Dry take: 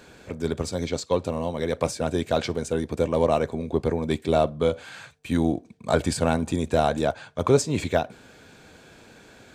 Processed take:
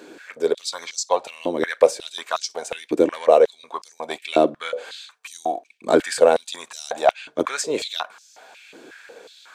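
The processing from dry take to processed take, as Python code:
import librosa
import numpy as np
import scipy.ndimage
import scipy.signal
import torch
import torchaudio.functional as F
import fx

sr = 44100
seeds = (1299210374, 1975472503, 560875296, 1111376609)

y = fx.filter_held_highpass(x, sr, hz=5.5, low_hz=320.0, high_hz=5700.0)
y = F.gain(torch.from_numpy(y), 2.0).numpy()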